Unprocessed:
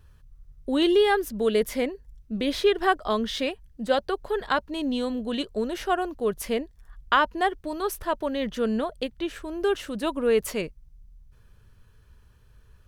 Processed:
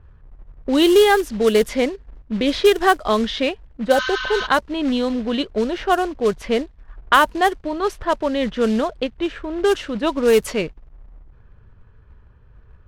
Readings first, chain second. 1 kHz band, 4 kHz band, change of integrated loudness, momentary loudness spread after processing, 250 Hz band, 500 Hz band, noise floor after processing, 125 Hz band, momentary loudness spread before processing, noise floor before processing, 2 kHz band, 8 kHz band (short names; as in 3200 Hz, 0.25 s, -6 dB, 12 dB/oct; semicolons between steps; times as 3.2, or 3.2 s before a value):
+7.0 dB, +7.0 dB, +7.0 dB, 10 LU, +7.0 dB, +7.0 dB, -49 dBFS, +7.0 dB, 10 LU, -56 dBFS, +7.5 dB, +6.5 dB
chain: short-mantissa float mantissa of 2-bit; spectral repair 3.95–4.44, 1000–6800 Hz before; low-pass opened by the level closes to 1500 Hz, open at -17.5 dBFS; gain +7 dB